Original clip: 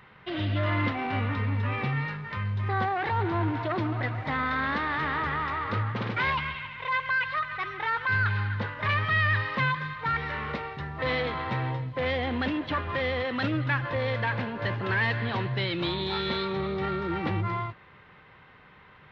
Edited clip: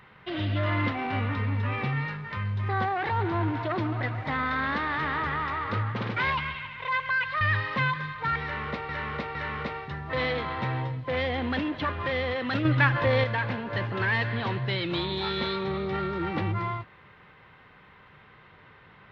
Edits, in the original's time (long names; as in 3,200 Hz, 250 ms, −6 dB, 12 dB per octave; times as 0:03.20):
0:07.41–0:09.22: remove
0:10.24–0:10.70: repeat, 3 plays
0:13.54–0:14.13: clip gain +5.5 dB